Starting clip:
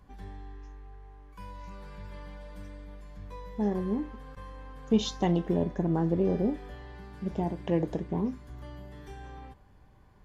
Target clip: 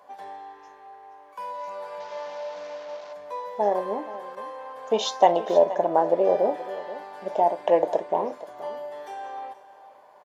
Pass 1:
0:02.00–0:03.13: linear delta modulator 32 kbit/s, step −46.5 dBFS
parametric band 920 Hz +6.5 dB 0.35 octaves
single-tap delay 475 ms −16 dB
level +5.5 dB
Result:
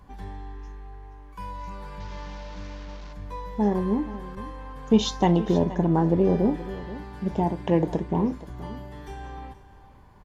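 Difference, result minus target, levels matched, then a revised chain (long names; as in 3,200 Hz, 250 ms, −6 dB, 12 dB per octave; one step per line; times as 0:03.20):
500 Hz band −6.0 dB
0:02.00–0:03.13: linear delta modulator 32 kbit/s, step −46.5 dBFS
high-pass with resonance 610 Hz, resonance Q 4.7
parametric band 920 Hz +6.5 dB 0.35 octaves
single-tap delay 475 ms −16 dB
level +5.5 dB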